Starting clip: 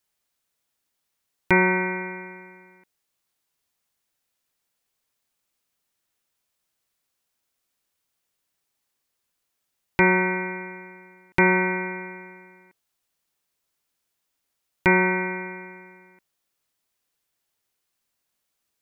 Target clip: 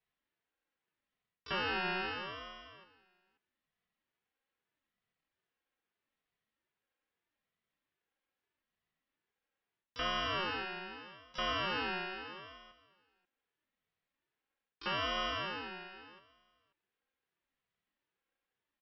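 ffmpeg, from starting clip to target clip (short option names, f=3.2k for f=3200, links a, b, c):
-filter_complex "[0:a]aecho=1:1:3.7:0.71,areverse,acompressor=threshold=-26dB:ratio=10,areverse,highpass=f=150:w=0.5412,highpass=f=150:w=1.3066,equalizer=f=190:t=q:w=4:g=4,equalizer=f=300:t=q:w=4:g=-8,equalizer=f=630:t=q:w=4:g=-9,equalizer=f=990:t=q:w=4:g=8,lowpass=f=2.8k:w=0.5412,lowpass=f=2.8k:w=1.3066,asplit=2[a][b];[b]asetrate=88200,aresample=44100,atempo=0.5,volume=-12dB[c];[a][c]amix=inputs=2:normalize=0,asplit=2[d][e];[e]aecho=0:1:534:0.112[f];[d][f]amix=inputs=2:normalize=0,aeval=exprs='val(0)*sin(2*PI*720*n/s+720*0.25/0.79*sin(2*PI*0.79*n/s))':c=same,volume=-3.5dB"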